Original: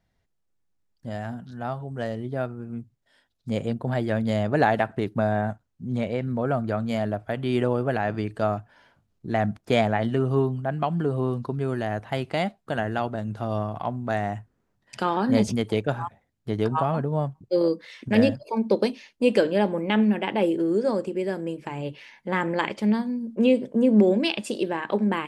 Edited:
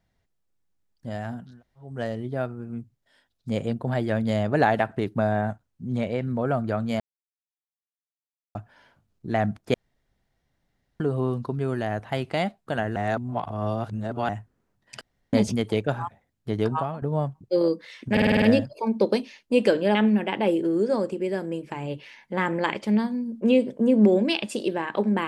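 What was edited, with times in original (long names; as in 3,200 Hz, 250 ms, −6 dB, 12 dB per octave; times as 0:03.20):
0:01.51–0:01.87: fill with room tone, crossfade 0.24 s
0:07.00–0:08.55: silence
0:09.74–0:11.00: fill with room tone
0:12.96–0:14.29: reverse
0:15.01–0:15.33: fill with room tone
0:16.69–0:17.02: fade out, to −15 dB
0:18.12: stutter 0.05 s, 7 plays
0:19.65–0:19.90: remove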